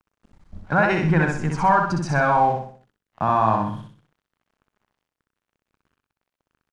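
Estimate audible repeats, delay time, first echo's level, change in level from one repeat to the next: 5, 63 ms, -3.5 dB, -7.5 dB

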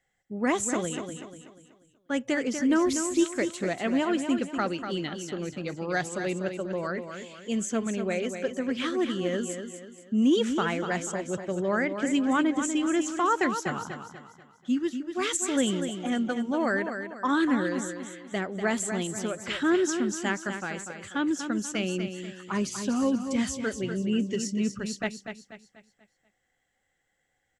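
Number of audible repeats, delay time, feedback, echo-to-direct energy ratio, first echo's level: 4, 243 ms, 40%, -7.0 dB, -8.0 dB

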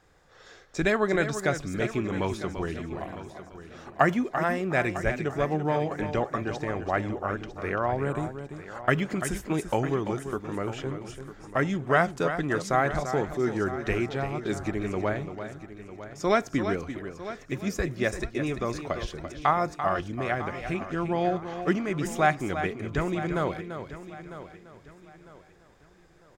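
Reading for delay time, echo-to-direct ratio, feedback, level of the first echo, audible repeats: 340 ms, -8.0 dB, no regular repeats, -9.5 dB, 6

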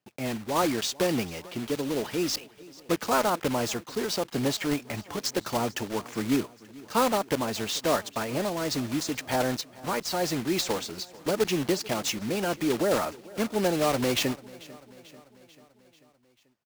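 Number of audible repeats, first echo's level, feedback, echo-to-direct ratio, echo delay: 4, -21.0 dB, 59%, -19.0 dB, 441 ms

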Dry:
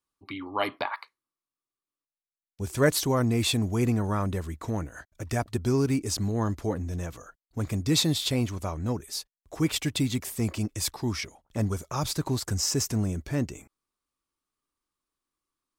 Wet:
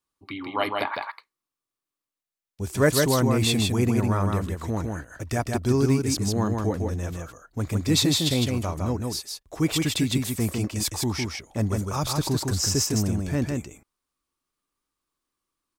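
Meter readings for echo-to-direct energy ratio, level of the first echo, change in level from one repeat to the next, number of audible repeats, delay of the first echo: -3.5 dB, -3.5 dB, no regular repeats, 1, 157 ms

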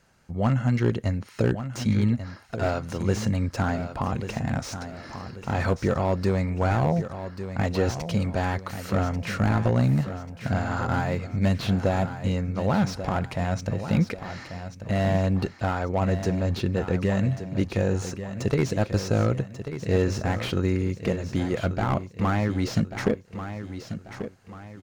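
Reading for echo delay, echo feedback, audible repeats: 1139 ms, 40%, 4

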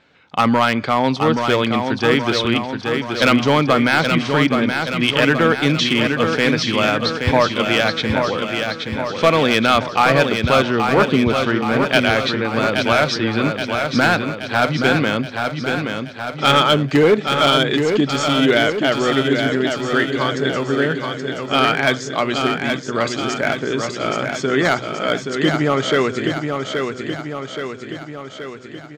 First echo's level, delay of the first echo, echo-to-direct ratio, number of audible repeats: -5.5 dB, 825 ms, -3.5 dB, 7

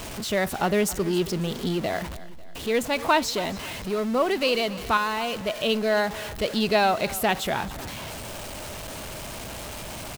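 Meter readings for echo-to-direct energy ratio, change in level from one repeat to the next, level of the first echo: -16.5 dB, -6.5 dB, -17.5 dB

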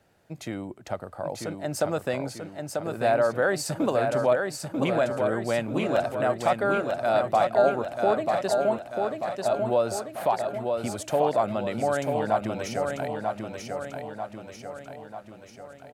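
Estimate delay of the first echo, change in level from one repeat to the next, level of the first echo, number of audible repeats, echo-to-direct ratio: 941 ms, -5.5 dB, -4.5 dB, 6, -3.0 dB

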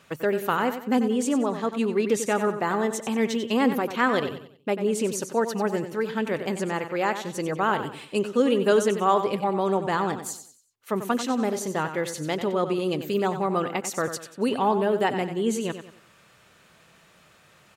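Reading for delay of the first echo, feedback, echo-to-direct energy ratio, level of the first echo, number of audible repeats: 93 ms, 37%, -9.5 dB, -10.0 dB, 3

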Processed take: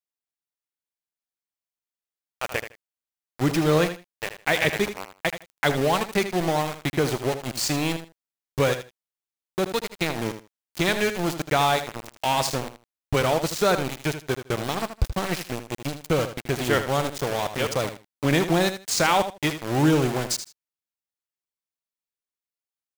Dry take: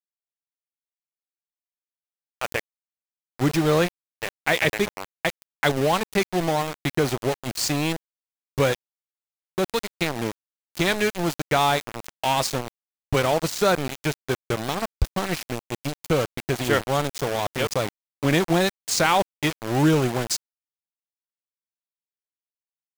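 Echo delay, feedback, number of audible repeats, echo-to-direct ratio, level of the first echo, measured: 79 ms, 18%, 2, -10.5 dB, -10.5 dB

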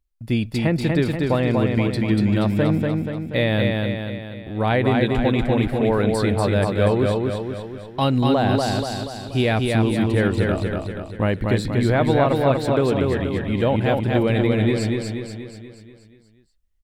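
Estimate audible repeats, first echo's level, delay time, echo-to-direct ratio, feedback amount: 6, -3.0 dB, 240 ms, -1.5 dB, 53%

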